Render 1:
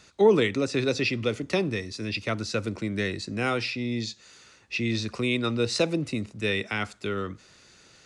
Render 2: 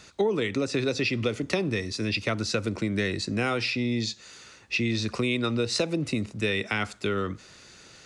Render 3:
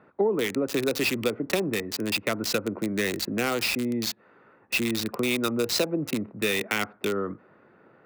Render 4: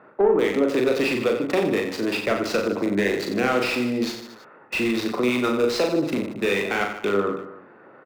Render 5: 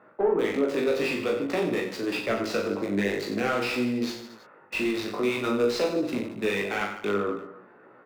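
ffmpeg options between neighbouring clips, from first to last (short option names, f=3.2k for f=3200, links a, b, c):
-af "acompressor=threshold=-27dB:ratio=6,volume=4.5dB"
-filter_complex "[0:a]highpass=190,acrossover=split=1500[a][b];[b]acrusher=bits=4:mix=0:aa=0.000001[c];[a][c]amix=inputs=2:normalize=0,volume=1.5dB"
-filter_complex "[0:a]asplit=2[a][b];[b]highpass=f=720:p=1,volume=17dB,asoftclip=type=tanh:threshold=-9dB[c];[a][c]amix=inputs=2:normalize=0,lowpass=f=1.1k:p=1,volume=-6dB,aecho=1:1:40|90|152.5|230.6|328.3:0.631|0.398|0.251|0.158|0.1"
-af "flanger=delay=16:depth=4.2:speed=0.51,volume=-1.5dB"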